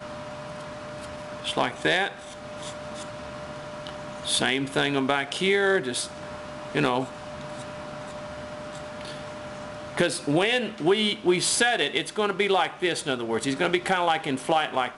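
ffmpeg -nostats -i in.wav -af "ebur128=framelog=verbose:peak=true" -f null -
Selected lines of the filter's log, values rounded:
Integrated loudness:
  I:         -24.8 LUFS
  Threshold: -36.6 LUFS
Loudness range:
  LRA:         8.7 LU
  Threshold: -46.6 LUFS
  LRA low:   -32.2 LUFS
  LRA high:  -23.6 LUFS
True peak:
  Peak:       -9.7 dBFS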